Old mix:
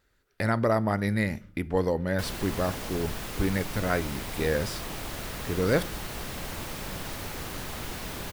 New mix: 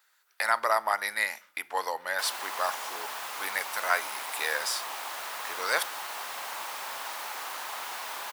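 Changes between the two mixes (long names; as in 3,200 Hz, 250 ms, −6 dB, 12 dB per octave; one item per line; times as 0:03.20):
speech: add spectral tilt +3 dB per octave
master: add high-pass with resonance 910 Hz, resonance Q 2.1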